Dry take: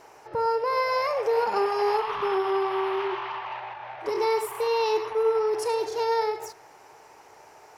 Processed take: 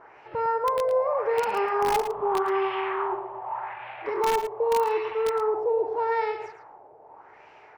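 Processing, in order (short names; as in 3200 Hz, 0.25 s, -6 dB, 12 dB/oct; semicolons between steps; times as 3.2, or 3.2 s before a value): LFO low-pass sine 0.83 Hz 600–2800 Hz; in parallel at -4 dB: wrapped overs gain 13.5 dB; on the sum: outdoor echo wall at 19 m, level -10 dB; gain -6.5 dB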